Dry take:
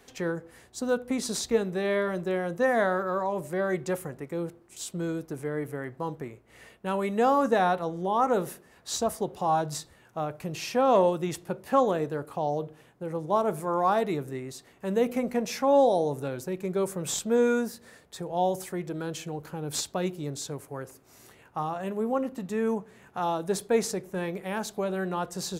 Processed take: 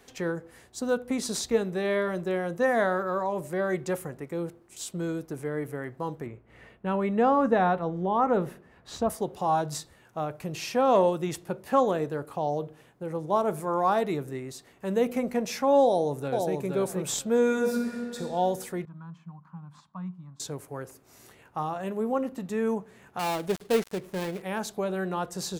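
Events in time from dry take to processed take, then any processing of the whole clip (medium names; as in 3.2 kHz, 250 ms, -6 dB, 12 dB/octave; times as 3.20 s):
6.26–9.10 s: tone controls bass +5 dB, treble -15 dB
15.85–16.57 s: echo throw 470 ms, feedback 15%, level -4 dB
17.46–18.17 s: reverb throw, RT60 2.5 s, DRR 0 dB
18.85–20.40 s: two resonant band-passes 430 Hz, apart 2.6 oct
23.19–24.42 s: dead-time distortion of 0.21 ms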